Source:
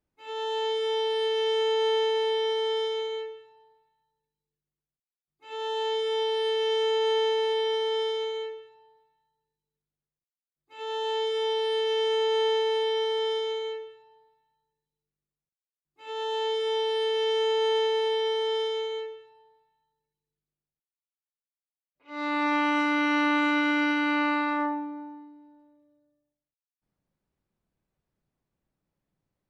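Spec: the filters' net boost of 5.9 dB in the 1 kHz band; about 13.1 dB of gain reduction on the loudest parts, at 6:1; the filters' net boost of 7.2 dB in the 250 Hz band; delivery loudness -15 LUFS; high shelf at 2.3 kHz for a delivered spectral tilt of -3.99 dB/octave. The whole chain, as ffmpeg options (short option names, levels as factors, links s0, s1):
-af "equalizer=f=250:t=o:g=8.5,equalizer=f=1000:t=o:g=5,highshelf=f=2300:g=8,acompressor=threshold=0.0316:ratio=6,volume=7.5"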